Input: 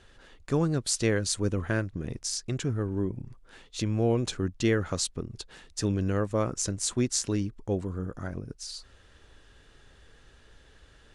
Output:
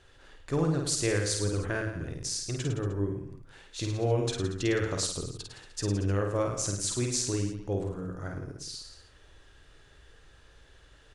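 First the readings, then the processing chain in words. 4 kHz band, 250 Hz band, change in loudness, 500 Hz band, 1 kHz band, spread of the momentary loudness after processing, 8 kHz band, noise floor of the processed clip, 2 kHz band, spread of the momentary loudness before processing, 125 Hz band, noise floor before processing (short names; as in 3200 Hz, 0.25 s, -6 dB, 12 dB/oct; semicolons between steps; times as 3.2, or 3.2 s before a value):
-0.5 dB, -3.0 dB, -1.0 dB, -0.5 dB, -0.5 dB, 12 LU, -0.5 dB, -57 dBFS, 0.0 dB, 12 LU, -0.5 dB, -57 dBFS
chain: bell 220 Hz -14.5 dB 0.22 oct; on a send: reverse bouncing-ball echo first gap 50 ms, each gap 1.1×, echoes 5; on the sum: gain -2.5 dB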